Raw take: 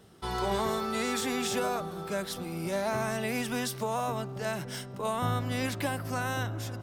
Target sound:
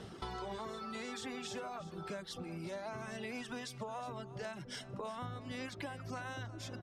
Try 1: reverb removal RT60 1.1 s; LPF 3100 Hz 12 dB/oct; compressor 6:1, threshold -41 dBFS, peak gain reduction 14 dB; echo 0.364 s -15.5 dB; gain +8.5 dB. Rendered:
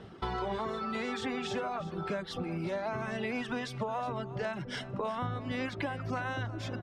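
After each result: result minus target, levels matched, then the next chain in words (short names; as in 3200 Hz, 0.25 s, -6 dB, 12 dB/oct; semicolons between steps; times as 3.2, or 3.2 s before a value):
8000 Hz band -9.5 dB; compressor: peak gain reduction -8.5 dB
reverb removal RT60 1.1 s; LPF 6400 Hz 12 dB/oct; compressor 6:1, threshold -41 dBFS, peak gain reduction 14 dB; echo 0.364 s -15.5 dB; gain +8.5 dB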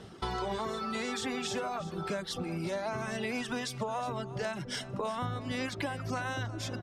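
compressor: peak gain reduction -8.5 dB
reverb removal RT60 1.1 s; LPF 6400 Hz 12 dB/oct; compressor 6:1, threshold -51 dBFS, peak gain reduction 22.5 dB; echo 0.364 s -15.5 dB; gain +8.5 dB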